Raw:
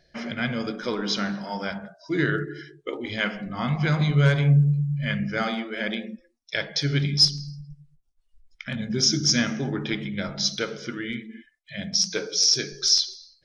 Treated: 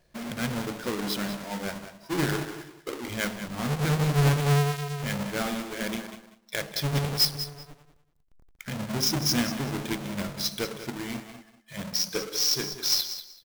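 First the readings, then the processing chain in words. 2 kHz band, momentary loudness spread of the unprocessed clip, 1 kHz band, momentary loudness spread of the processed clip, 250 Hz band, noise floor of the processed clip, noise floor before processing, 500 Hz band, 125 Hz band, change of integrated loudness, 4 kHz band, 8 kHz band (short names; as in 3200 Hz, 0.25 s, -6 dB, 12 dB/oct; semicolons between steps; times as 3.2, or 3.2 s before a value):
-5.0 dB, 15 LU, +0.5 dB, 14 LU, -3.5 dB, -63 dBFS, -67 dBFS, -2.0 dB, -4.0 dB, -4.0 dB, -5.0 dB, -4.0 dB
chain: half-waves squared off; feedback echo 0.191 s, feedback 18%, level -12 dB; gain -7.5 dB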